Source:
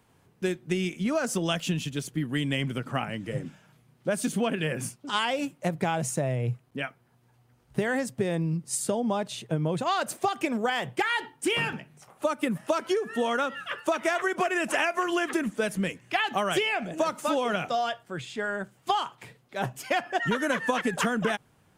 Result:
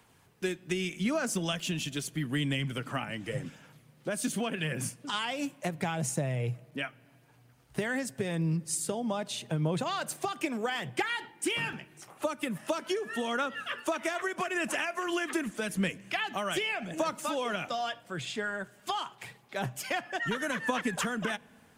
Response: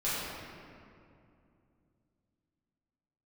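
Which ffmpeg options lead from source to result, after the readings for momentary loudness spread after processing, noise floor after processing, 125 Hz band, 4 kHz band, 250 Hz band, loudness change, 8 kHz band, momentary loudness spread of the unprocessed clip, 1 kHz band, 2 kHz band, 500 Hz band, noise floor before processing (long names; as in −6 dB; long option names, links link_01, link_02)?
6 LU, −61 dBFS, −3.0 dB, −2.5 dB, −4.0 dB, −4.0 dB, −1.0 dB, 7 LU, −6.0 dB, −3.5 dB, −6.0 dB, −64 dBFS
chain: -filter_complex "[0:a]tiltshelf=frequency=830:gain=-4,acrossover=split=280[link_01][link_02];[link_02]acompressor=threshold=-36dB:ratio=2[link_03];[link_01][link_03]amix=inputs=2:normalize=0,aphaser=in_gain=1:out_gain=1:delay=3.4:decay=0.27:speed=0.82:type=sinusoidal,asplit=2[link_04][link_05];[link_05]asuperstop=centerf=1300:order=4:qfactor=5.7[link_06];[1:a]atrim=start_sample=2205[link_07];[link_06][link_07]afir=irnorm=-1:irlink=0,volume=-31.5dB[link_08];[link_04][link_08]amix=inputs=2:normalize=0"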